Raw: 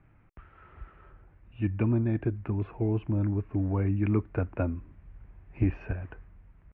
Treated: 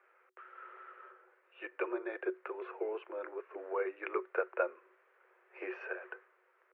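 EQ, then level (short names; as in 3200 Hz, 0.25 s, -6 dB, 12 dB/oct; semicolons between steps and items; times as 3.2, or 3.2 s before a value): rippled Chebyshev high-pass 360 Hz, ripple 9 dB; +6.0 dB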